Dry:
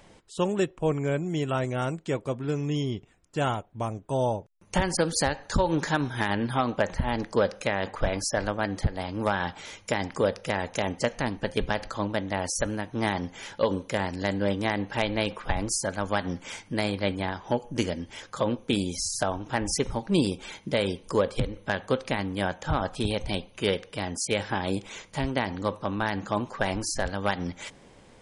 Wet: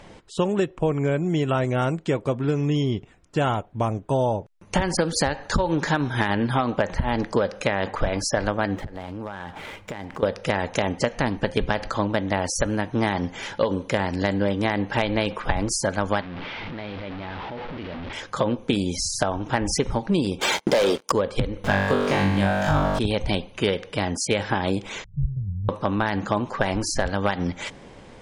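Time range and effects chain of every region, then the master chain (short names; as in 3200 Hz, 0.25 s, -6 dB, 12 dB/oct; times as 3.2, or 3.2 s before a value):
8.76–10.23 median filter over 9 samples + compressor 8:1, threshold -38 dBFS
16.21–18.13 delta modulation 32 kbps, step -24 dBFS + LPF 3700 Hz 24 dB/oct + level quantiser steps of 21 dB
20.41–21.12 HPF 410 Hz + sample leveller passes 5 + bell 2500 Hz -5.5 dB 1.3 oct
21.64–22.99 zero-crossing step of -39.5 dBFS + flutter echo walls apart 3.5 m, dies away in 1 s + upward compressor, threshold -30 dBFS
25.04–25.69 inverse Chebyshev low-pass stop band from 880 Hz, stop band 80 dB + comb 1.9 ms, depth 95%
whole clip: high shelf 7400 Hz -12 dB; compressor 5:1, threshold -27 dBFS; gain +8.5 dB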